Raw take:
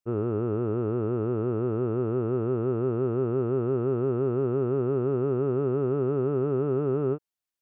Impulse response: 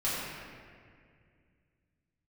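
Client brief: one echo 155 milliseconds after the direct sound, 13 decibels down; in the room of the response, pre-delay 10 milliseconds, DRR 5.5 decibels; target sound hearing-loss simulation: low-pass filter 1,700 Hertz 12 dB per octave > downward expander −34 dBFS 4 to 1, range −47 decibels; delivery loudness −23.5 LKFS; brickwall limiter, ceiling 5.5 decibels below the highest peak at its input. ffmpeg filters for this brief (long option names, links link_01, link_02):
-filter_complex "[0:a]alimiter=limit=-23dB:level=0:latency=1,aecho=1:1:155:0.224,asplit=2[link_01][link_02];[1:a]atrim=start_sample=2205,adelay=10[link_03];[link_02][link_03]afir=irnorm=-1:irlink=0,volume=-14.5dB[link_04];[link_01][link_04]amix=inputs=2:normalize=0,lowpass=1700,agate=range=-47dB:threshold=-34dB:ratio=4,volume=6dB"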